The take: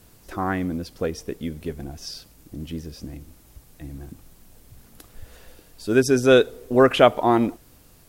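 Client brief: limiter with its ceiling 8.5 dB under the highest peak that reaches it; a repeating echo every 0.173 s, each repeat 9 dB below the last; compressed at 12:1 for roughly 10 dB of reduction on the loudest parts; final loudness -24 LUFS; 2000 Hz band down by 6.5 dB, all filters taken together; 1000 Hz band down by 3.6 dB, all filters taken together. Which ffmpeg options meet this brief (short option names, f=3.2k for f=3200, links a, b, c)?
-af "equalizer=f=1k:t=o:g=-3,equalizer=f=2k:t=o:g=-8.5,acompressor=threshold=-21dB:ratio=12,alimiter=limit=-22.5dB:level=0:latency=1,aecho=1:1:173|346|519|692:0.355|0.124|0.0435|0.0152,volume=10dB"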